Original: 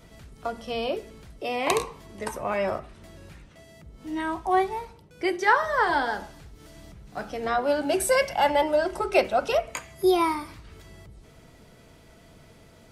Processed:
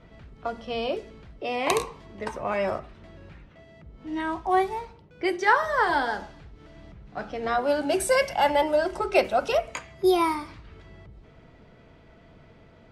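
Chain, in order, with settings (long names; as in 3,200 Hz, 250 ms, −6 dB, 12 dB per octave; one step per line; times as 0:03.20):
low-pass that shuts in the quiet parts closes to 2,600 Hz, open at −19.5 dBFS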